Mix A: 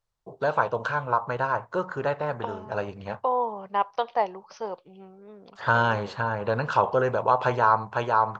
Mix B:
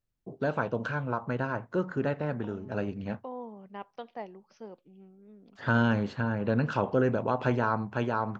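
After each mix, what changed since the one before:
second voice −9.0 dB
master: add octave-band graphic EQ 250/500/1,000/4,000/8,000 Hz +10/−4/−11/−5/−6 dB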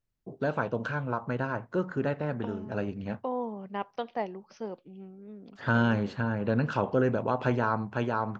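second voice +7.5 dB

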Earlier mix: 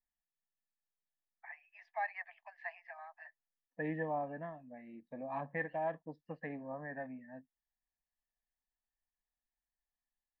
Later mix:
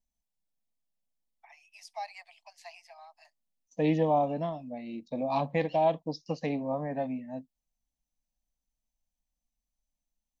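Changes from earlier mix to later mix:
first voice −11.0 dB
master: remove transistor ladder low-pass 1,800 Hz, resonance 85%

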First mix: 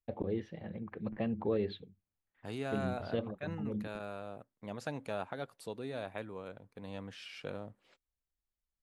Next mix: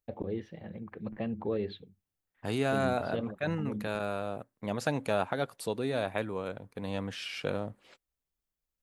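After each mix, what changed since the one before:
second voice +9.0 dB
master: add high-shelf EQ 10,000 Hz +6 dB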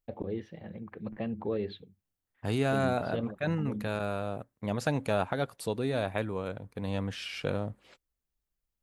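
second voice: remove high-pass filter 170 Hz 6 dB per octave

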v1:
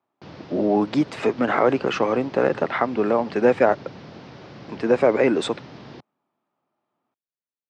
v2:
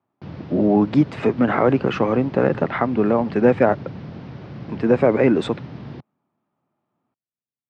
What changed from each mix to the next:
master: add bass and treble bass +11 dB, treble −9 dB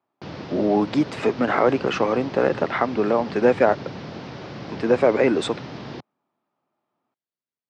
background +6.0 dB
master: add bass and treble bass −11 dB, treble +9 dB

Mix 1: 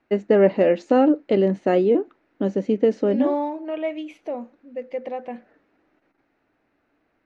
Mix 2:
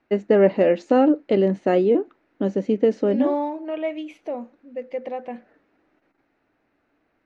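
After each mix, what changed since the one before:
nothing changed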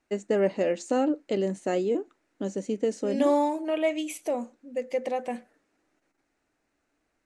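first voice −9.0 dB
master: remove high-frequency loss of the air 280 metres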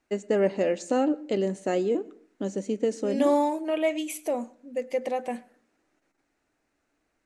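second voice: remove low-pass filter 10,000 Hz 12 dB per octave
reverb: on, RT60 0.50 s

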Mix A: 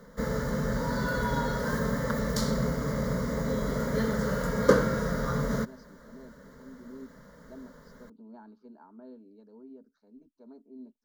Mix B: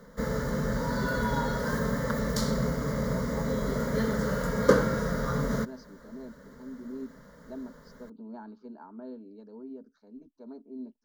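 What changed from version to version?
speech +6.0 dB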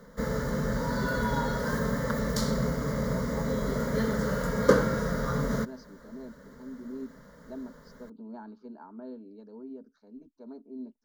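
nothing changed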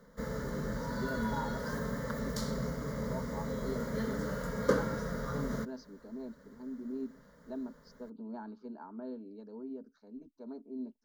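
background −7.5 dB

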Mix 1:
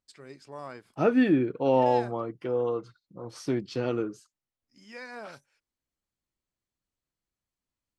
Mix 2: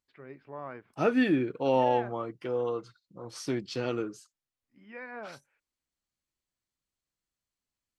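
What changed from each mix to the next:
first voice: add low-pass filter 2,500 Hz 24 dB per octave
second voice: add tilt shelving filter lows −3.5 dB, about 1,400 Hz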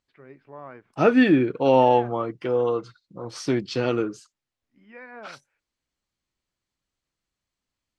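second voice +8.0 dB
master: add high-frequency loss of the air 52 metres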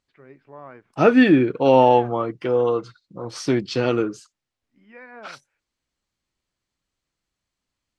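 second voice +3.0 dB

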